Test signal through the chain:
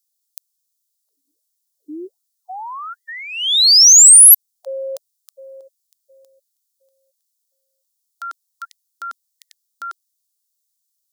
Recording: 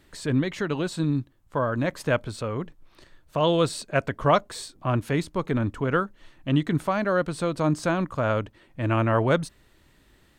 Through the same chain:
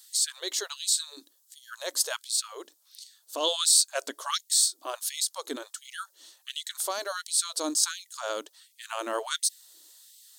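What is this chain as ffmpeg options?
ffmpeg -i in.wav -af "aexciter=amount=11.4:drive=6.2:freq=3600,afftfilt=real='re*gte(b*sr/1024,250*pow(2000/250,0.5+0.5*sin(2*PI*1.4*pts/sr)))':imag='im*gte(b*sr/1024,250*pow(2000/250,0.5+0.5*sin(2*PI*1.4*pts/sr)))':win_size=1024:overlap=0.75,volume=-7dB" out.wav

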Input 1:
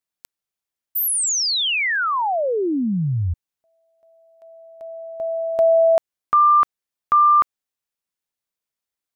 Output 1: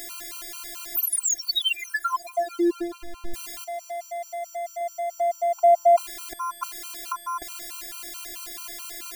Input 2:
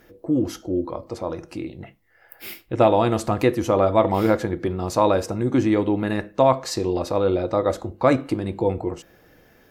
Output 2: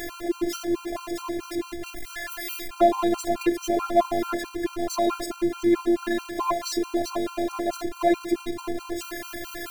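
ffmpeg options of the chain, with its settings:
ffmpeg -i in.wav -af "aeval=exprs='val(0)+0.5*0.0668*sgn(val(0))':channel_layout=same,afftfilt=real='hypot(re,im)*cos(PI*b)':imag='0':win_size=512:overlap=0.75,afftfilt=real='re*gt(sin(2*PI*4.6*pts/sr)*(1-2*mod(floor(b*sr/1024/790),2)),0)':imag='im*gt(sin(2*PI*4.6*pts/sr)*(1-2*mod(floor(b*sr/1024/790),2)),0)':win_size=1024:overlap=0.75" out.wav

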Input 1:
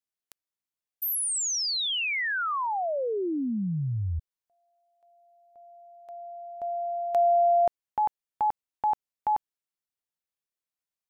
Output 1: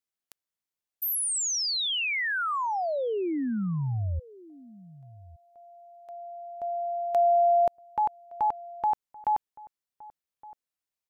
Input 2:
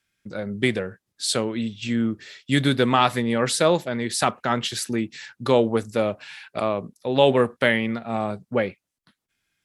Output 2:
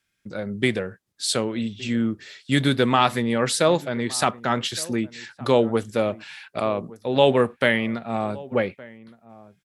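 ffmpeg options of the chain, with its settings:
ffmpeg -i in.wav -filter_complex "[0:a]asplit=2[link_01][link_02];[link_02]adelay=1166,volume=-20dB,highshelf=frequency=4000:gain=-26.2[link_03];[link_01][link_03]amix=inputs=2:normalize=0" out.wav

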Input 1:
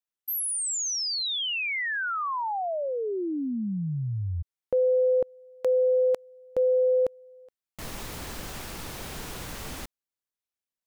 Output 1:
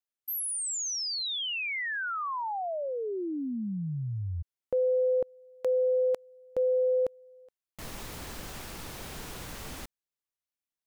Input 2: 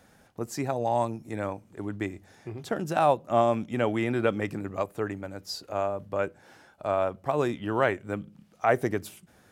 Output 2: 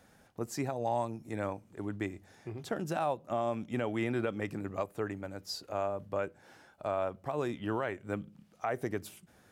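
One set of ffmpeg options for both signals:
ffmpeg -i in.wav -af "alimiter=limit=-18dB:level=0:latency=1:release=238,volume=-3.5dB" out.wav

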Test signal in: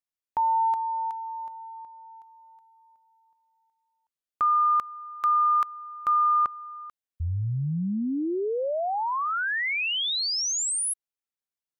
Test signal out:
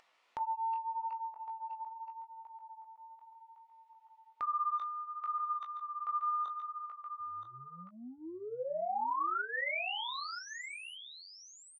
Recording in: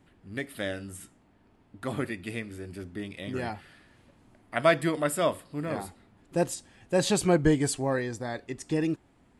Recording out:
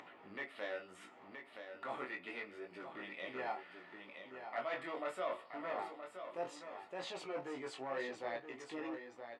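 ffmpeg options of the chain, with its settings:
ffmpeg -i in.wav -filter_complex "[0:a]areverse,acompressor=threshold=-35dB:ratio=12:attack=46:release=27:knee=6:detection=rms,areverse,asoftclip=type=hard:threshold=-30dB,flanger=delay=17:depth=6.3:speed=0.71,highpass=650,lowpass=2200,bandreject=frequency=1600:width=6.4,asplit=2[link_01][link_02];[link_02]adelay=16,volume=-9dB[link_03];[link_01][link_03]amix=inputs=2:normalize=0,aecho=1:1:973:0.355,acompressor=mode=upward:threshold=-50dB:ratio=2.5:attack=13:release=332:knee=2.83:detection=peak,volume=3.5dB" out.wav

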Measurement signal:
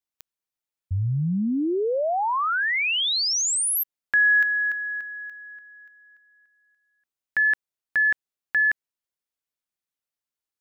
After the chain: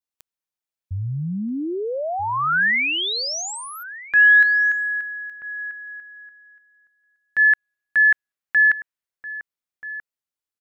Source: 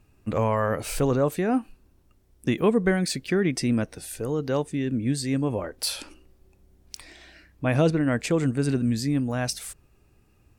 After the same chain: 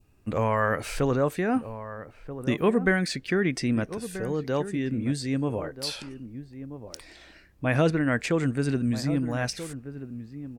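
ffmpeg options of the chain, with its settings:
ffmpeg -i in.wav -filter_complex "[0:a]adynamicequalizer=threshold=0.0158:dfrequency=1700:dqfactor=1.3:tfrequency=1700:tqfactor=1.3:attack=5:release=100:ratio=0.375:range=4:mode=boostabove:tftype=bell,acrossover=split=7100[link_01][link_02];[link_02]acompressor=threshold=-44dB:ratio=6:release=383:detection=rms[link_03];[link_01][link_03]amix=inputs=2:normalize=0,asplit=2[link_04][link_05];[link_05]adelay=1283,volume=-12dB,highshelf=frequency=4000:gain=-28.9[link_06];[link_04][link_06]amix=inputs=2:normalize=0,volume=-2dB" out.wav

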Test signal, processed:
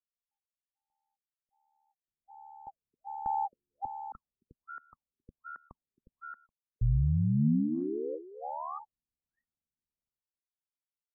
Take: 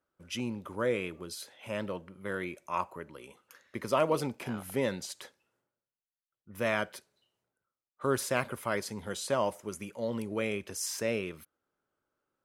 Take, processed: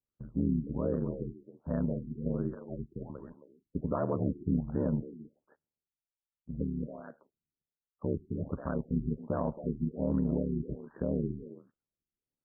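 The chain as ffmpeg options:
ffmpeg -i in.wav -filter_complex "[0:a]aemphasis=mode=reproduction:type=riaa,agate=range=-16dB:threshold=-49dB:ratio=16:detection=peak,equalizer=frequency=200:width=3:gain=6.5,alimiter=limit=-18.5dB:level=0:latency=1:release=91,aeval=exprs='val(0)*sin(2*PI*37*n/s)':channel_layout=same,asplit=2[link_01][link_02];[link_02]adelay=270,highpass=300,lowpass=3400,asoftclip=type=hard:threshold=-28dB,volume=-9dB[link_03];[link_01][link_03]amix=inputs=2:normalize=0,afftfilt=real='re*lt(b*sr/1024,400*pow(1900/400,0.5+0.5*sin(2*PI*1.3*pts/sr)))':imag='im*lt(b*sr/1024,400*pow(1900/400,0.5+0.5*sin(2*PI*1.3*pts/sr)))':win_size=1024:overlap=0.75" out.wav

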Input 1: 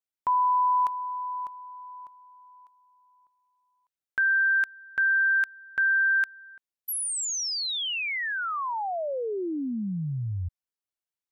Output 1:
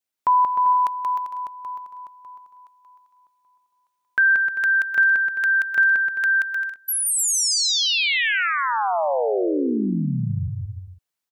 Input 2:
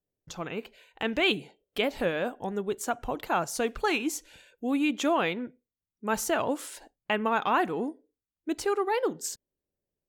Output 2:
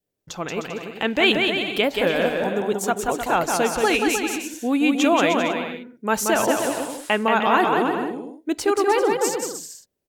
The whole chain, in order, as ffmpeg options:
ffmpeg -i in.wav -filter_complex "[0:a]lowshelf=frequency=89:gain=-8.5,asplit=2[link_01][link_02];[link_02]aecho=0:1:180|306|394.2|455.9|499.2:0.631|0.398|0.251|0.158|0.1[link_03];[link_01][link_03]amix=inputs=2:normalize=0,adynamicequalizer=threshold=0.00708:dfrequency=1200:dqfactor=3.3:tfrequency=1200:tqfactor=3.3:attack=5:release=100:ratio=0.375:range=2:mode=cutabove:tftype=bell,volume=7dB" out.wav

